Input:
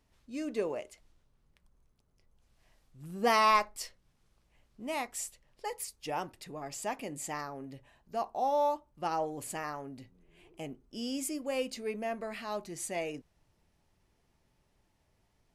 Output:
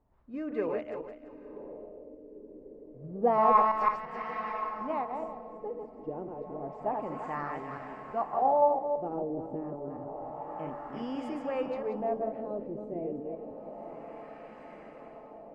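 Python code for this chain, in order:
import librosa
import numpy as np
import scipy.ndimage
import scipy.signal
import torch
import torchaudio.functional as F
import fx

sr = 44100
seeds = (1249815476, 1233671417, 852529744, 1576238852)

y = fx.reverse_delay_fb(x, sr, ms=169, feedback_pct=45, wet_db=-4.0)
y = fx.echo_diffused(y, sr, ms=1021, feedback_pct=68, wet_db=-12.5)
y = fx.filter_lfo_lowpass(y, sr, shape='sine', hz=0.29, low_hz=400.0, high_hz=1700.0, q=1.5)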